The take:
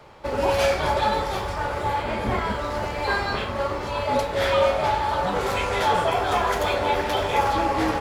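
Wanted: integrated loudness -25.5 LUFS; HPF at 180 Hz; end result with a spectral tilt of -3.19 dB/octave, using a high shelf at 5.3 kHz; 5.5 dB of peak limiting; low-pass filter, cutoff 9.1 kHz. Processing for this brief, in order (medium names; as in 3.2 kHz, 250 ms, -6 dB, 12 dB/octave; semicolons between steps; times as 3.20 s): high-pass 180 Hz; low-pass 9.1 kHz; treble shelf 5.3 kHz +7 dB; trim -1 dB; peak limiter -15.5 dBFS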